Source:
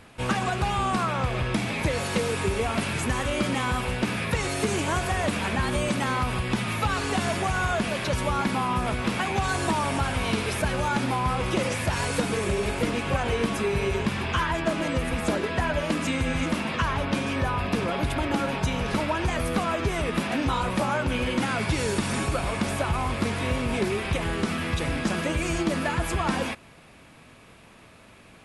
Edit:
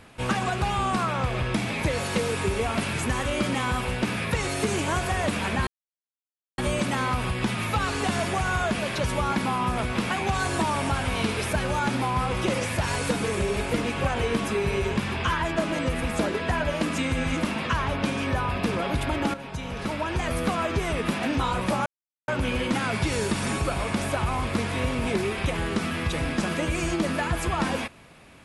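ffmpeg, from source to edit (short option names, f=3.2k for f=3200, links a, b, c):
-filter_complex "[0:a]asplit=4[a][b][c][d];[a]atrim=end=5.67,asetpts=PTS-STARTPTS,afade=t=out:st=5.666:d=0.004:c=hsin,apad=pad_dur=0.91[e];[b]atrim=start=5.67:end=18.43,asetpts=PTS-STARTPTS,afade=t=in:d=0.004:c=hsin,afade=t=out:st=12.756:d=0.004:c=hsin:silence=0.251189[f];[c]atrim=start=18.43:end=20.95,asetpts=PTS-STARTPTS,afade=t=in:d=1.02:silence=0.251189,afade=t=out:st=2.516:d=0.004:c=hsin,apad=pad_dur=0.42[g];[d]atrim=start=20.95,asetpts=PTS-STARTPTS,afade=t=in:d=0.004:c=hsin[h];[e][f][g][h]concat=n=4:v=0:a=1"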